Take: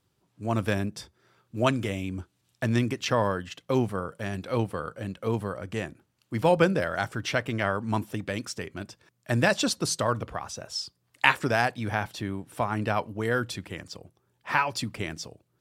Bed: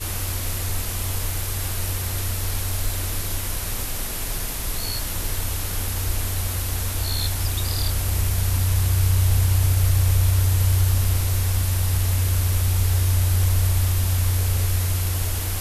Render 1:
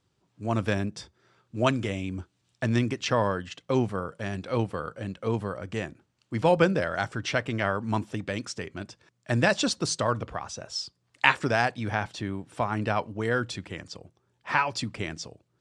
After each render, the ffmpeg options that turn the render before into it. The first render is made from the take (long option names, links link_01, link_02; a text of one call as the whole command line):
ffmpeg -i in.wav -af "lowpass=frequency=8300:width=0.5412,lowpass=frequency=8300:width=1.3066" out.wav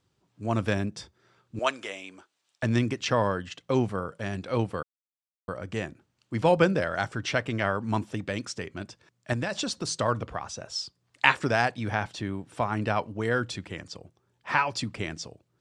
ffmpeg -i in.wav -filter_complex "[0:a]asettb=1/sr,asplit=3[link_01][link_02][link_03];[link_01]atrim=end=1.594[link_04];[link_02]atrim=start=1.59:end=2.63,asetpts=PTS-STARTPTS,afade=type=in:duration=0.004:curve=qsin,afade=type=out:start_time=1.036:duration=0.004:curve=qsin,highpass=610[link_05];[link_03]atrim=start=2.626[link_06];[link_04][link_05]acrossfade=duration=0.004:curve1=hsin:curve2=qsin[link_07];[link_07][link_06]acrossfade=duration=0.004:curve1=qsin:curve2=hsin,asettb=1/sr,asplit=3[link_08][link_09][link_10];[link_08]atrim=end=9.334[link_11];[link_09]atrim=start=9.33:end=9.97,asetpts=PTS-STARTPTS,afade=type=in:duration=0.004:curve=qsin,afade=type=out:start_time=0.636:duration=0.004:curve=qsin,acompressor=threshold=-26dB:ratio=6:attack=3.2:release=140:knee=1:detection=peak[link_12];[link_10]atrim=start=9.966[link_13];[link_11][link_12]acrossfade=duration=0.004:curve1=hsin:curve2=qsin[link_14];[link_14][link_13]acrossfade=duration=0.004:curve1=qsin:curve2=hsin,asplit=3[link_15][link_16][link_17];[link_15]atrim=end=4.83,asetpts=PTS-STARTPTS,afade=type=out:start_time=4.826:duration=0.004:curve=hsin[link_18];[link_16]atrim=start=4.83:end=5.48,asetpts=PTS-STARTPTS,volume=0[link_19];[link_17]atrim=start=5.48,asetpts=PTS-STARTPTS,afade=type=in:duration=0.004:curve=hsin[link_20];[link_18][link_19][link_20]concat=n=3:v=0:a=1" out.wav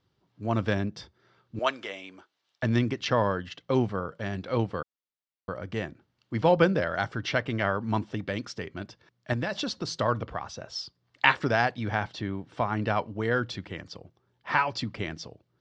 ffmpeg -i in.wav -af "lowpass=frequency=5300:width=0.5412,lowpass=frequency=5300:width=1.3066,bandreject=frequency=2500:width=16" out.wav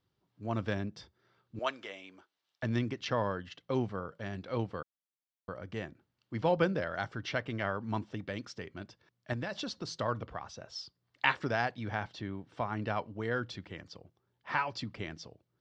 ffmpeg -i in.wav -af "volume=-7dB" out.wav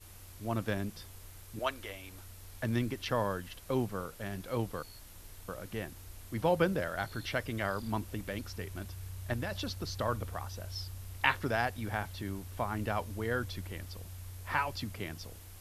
ffmpeg -i in.wav -i bed.wav -filter_complex "[1:a]volume=-25dB[link_01];[0:a][link_01]amix=inputs=2:normalize=0" out.wav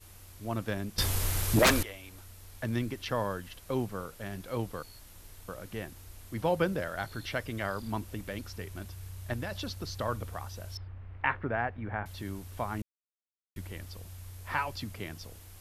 ffmpeg -i in.wav -filter_complex "[0:a]asettb=1/sr,asplit=3[link_01][link_02][link_03];[link_01]atrim=end=0.984[link_04];[link_02]atrim=start=0.98:end=1.83,asetpts=PTS-STARTPTS,afade=type=in:duration=0.004:curve=qsin,afade=type=out:start_time=0.846:duration=0.004:curve=qsin,aeval=exprs='0.141*sin(PI/2*7.08*val(0)/0.141)':channel_layout=same[link_05];[link_03]atrim=start=1.826[link_06];[link_04][link_05]acrossfade=duration=0.004:curve1=hsin:curve2=qsin[link_07];[link_07][link_06]acrossfade=duration=0.004:curve1=qsin:curve2=hsin,asettb=1/sr,asplit=3[link_08][link_09][link_10];[link_08]atrim=end=10.774[link_11];[link_09]atrim=start=10.77:end=12.06,asetpts=PTS-STARTPTS,afade=type=in:duration=0.004:curve=qsin,afade=type=out:start_time=1.286:duration=0.004:curve=qsin,lowpass=frequency=2200:width=0.5412,lowpass=frequency=2200:width=1.3066[link_12];[link_10]atrim=start=12.056[link_13];[link_11][link_12]acrossfade=duration=0.004:curve1=hsin:curve2=qsin[link_14];[link_14][link_13]acrossfade=duration=0.004:curve1=qsin:curve2=hsin,asplit=3[link_15][link_16][link_17];[link_15]atrim=end=12.82,asetpts=PTS-STARTPTS,afade=type=out:start_time=12.816:duration=0.004:curve=hsin[link_18];[link_16]atrim=start=12.82:end=13.56,asetpts=PTS-STARTPTS,volume=0[link_19];[link_17]atrim=start=13.56,asetpts=PTS-STARTPTS,afade=type=in:duration=0.004:curve=hsin[link_20];[link_18][link_19][link_20]concat=n=3:v=0:a=1" out.wav